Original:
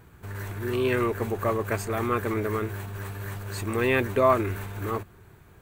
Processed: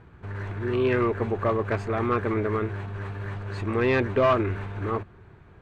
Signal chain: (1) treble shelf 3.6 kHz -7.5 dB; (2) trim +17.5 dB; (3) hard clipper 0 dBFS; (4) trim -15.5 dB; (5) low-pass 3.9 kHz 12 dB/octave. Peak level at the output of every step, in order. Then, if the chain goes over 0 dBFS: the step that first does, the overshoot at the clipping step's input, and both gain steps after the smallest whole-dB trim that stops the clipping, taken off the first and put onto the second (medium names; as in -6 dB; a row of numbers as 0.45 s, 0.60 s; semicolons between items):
-9.0 dBFS, +8.5 dBFS, 0.0 dBFS, -15.5 dBFS, -15.0 dBFS; step 2, 8.5 dB; step 2 +8.5 dB, step 4 -6.5 dB